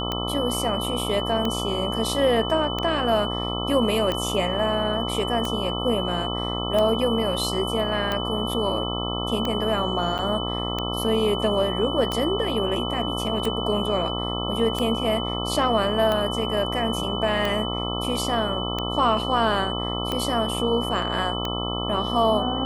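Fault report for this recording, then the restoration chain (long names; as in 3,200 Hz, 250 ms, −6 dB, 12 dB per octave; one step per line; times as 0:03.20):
mains buzz 60 Hz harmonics 22 −29 dBFS
scratch tick 45 rpm −12 dBFS
whistle 3,000 Hz −30 dBFS
0:10.18–0:10.19: drop-out 8.3 ms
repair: click removal
notch filter 3,000 Hz, Q 30
hum removal 60 Hz, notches 22
repair the gap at 0:10.18, 8.3 ms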